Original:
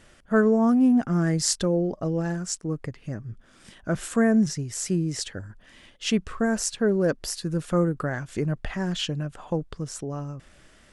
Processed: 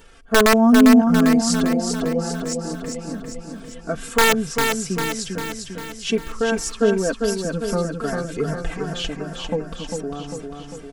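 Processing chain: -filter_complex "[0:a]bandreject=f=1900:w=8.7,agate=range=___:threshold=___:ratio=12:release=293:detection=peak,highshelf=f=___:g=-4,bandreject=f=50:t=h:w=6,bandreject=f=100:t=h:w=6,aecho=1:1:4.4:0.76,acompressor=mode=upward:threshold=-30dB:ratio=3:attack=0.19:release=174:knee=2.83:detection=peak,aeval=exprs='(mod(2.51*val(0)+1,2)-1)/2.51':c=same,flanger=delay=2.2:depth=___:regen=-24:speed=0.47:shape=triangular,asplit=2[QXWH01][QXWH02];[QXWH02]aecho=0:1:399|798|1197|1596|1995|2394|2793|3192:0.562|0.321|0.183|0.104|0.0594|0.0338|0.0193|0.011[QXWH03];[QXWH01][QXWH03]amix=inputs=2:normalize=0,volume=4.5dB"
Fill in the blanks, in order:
-21dB, -41dB, 4300, 1.6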